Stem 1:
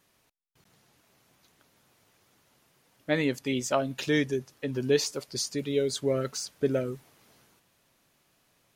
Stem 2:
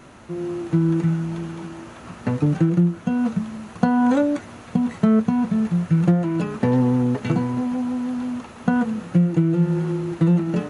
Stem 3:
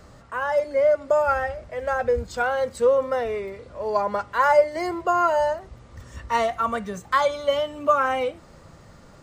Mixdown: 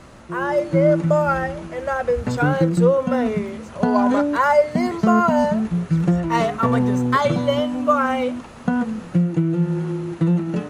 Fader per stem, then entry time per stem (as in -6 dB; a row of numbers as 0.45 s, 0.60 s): -18.0 dB, -1.0 dB, +1.5 dB; 0.00 s, 0.00 s, 0.00 s